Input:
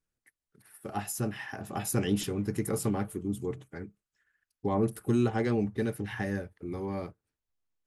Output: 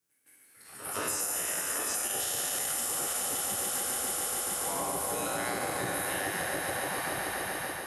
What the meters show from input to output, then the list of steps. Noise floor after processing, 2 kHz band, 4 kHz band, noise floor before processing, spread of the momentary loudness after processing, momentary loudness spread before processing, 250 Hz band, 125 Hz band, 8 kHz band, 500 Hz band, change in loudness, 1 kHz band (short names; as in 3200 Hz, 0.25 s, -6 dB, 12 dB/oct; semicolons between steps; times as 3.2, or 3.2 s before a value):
-60 dBFS, +7.5 dB, +9.0 dB, under -85 dBFS, 3 LU, 12 LU, -11.5 dB, -14.0 dB, +13.0 dB, -3.5 dB, +1.5 dB, +5.0 dB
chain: spectral trails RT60 2.86 s; high shelf 6000 Hz +11 dB; on a send: swelling echo 0.143 s, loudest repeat 5, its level -10.5 dB; on the sum: spectral gate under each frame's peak -10 dB weak; AGC gain up to 3.5 dB; HPF 120 Hz 6 dB/oct; limiter -16 dBFS, peak gain reduction 8.5 dB; reverse echo 0.165 s -14.5 dB; compressor, threshold -29 dBFS, peak gain reduction 7 dB